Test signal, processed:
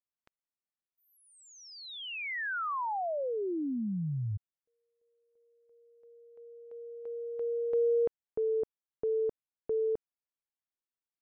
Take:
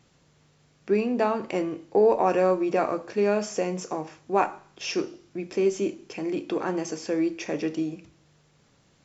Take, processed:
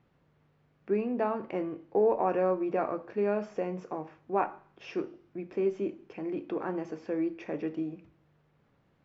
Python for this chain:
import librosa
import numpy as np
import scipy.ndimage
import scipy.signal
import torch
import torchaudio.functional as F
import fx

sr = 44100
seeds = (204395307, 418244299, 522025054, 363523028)

y = scipy.signal.sosfilt(scipy.signal.butter(2, 2000.0, 'lowpass', fs=sr, output='sos'), x)
y = F.gain(torch.from_numpy(y), -5.5).numpy()